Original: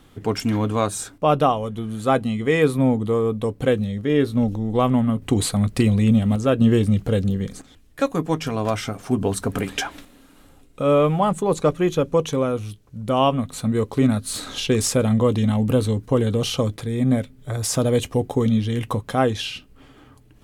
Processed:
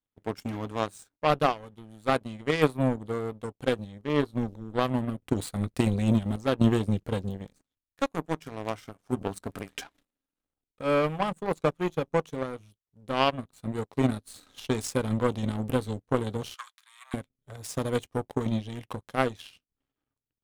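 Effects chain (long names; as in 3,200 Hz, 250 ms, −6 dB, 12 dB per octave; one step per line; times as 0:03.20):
power curve on the samples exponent 2
0:16.54–0:17.14: elliptic high-pass filter 1,100 Hz, stop band 80 dB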